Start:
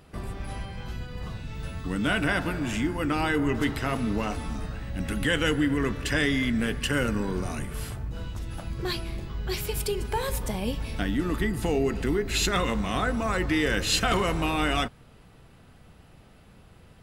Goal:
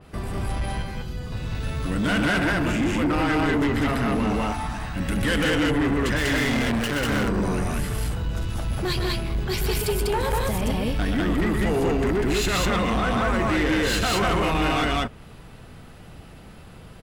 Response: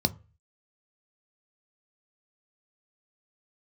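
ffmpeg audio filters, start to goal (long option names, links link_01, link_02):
-filter_complex "[0:a]asettb=1/sr,asplit=3[link_01][link_02][link_03];[link_01]atrim=end=0.824[link_04];[link_02]atrim=start=0.82:end=1.32,asetpts=PTS-STARTPTS,afade=type=in:duration=0.004:curve=qsin,afade=type=out:start_time=0.496:duration=0.004:curve=qsin,acrossover=split=100|570|3800[link_05][link_06][link_07][link_08];[link_05]acompressor=threshold=-40dB:ratio=4[link_09];[link_06]acompressor=threshold=-43dB:ratio=4[link_10];[link_07]acompressor=threshold=-57dB:ratio=4[link_11];[link_08]acompressor=threshold=-59dB:ratio=4[link_12];[link_09][link_10][link_11][link_12]amix=inputs=4:normalize=0[link_13];[link_03]atrim=start=1.316[link_14];[link_04][link_13]acrossfade=duration=0.004:curve1=hsin:curve2=qsin[link_15];[link_15][link_14]acrossfade=duration=0.004:curve1=qsin:curve2=hsin,asettb=1/sr,asplit=3[link_16][link_17][link_18];[link_16]atrim=end=4.324[link_19];[link_17]atrim=start=4.32:end=4.96,asetpts=PTS-STARTPTS,afade=type=in:duration=0.004:curve=qsin,afade=type=out:start_time=0.636:duration=0.004:curve=qsin,lowshelf=frequency=630:width_type=q:width=3:gain=-6[link_20];[link_18]atrim=start=4.956[link_21];[link_19][link_20]acrossfade=duration=0.004:curve1=hsin:curve2=qsin[link_22];[link_22][link_21]acrossfade=duration=0.004:curve1=qsin:curve2=hsin,asettb=1/sr,asplit=3[link_23][link_24][link_25];[link_23]atrim=end=6.164[link_26];[link_24]atrim=start=6.16:end=7.1,asetpts=PTS-STARTPTS,afade=type=in:duration=0.004:curve=qsin,afade=type=out:start_time=0.936:duration=0.004:curve=qsin,acrusher=bits=3:mix=0:aa=0.5[link_27];[link_25]atrim=start=7.096[link_28];[link_26][link_27]acrossfade=duration=0.004:curve1=hsin:curve2=qsin[link_29];[link_29][link_28]acrossfade=duration=0.004:curve1=qsin:curve2=hsin,aecho=1:1:125.4|195.3:0.447|1,asoftclip=type=tanh:threshold=-23.5dB,adynamicequalizer=threshold=0.00794:dfrequency=3200:dqfactor=0.7:tfrequency=3200:tqfactor=0.7:attack=5:release=100:ratio=0.375:range=2.5:mode=cutabove:tftype=highshelf,volume=5.5dB"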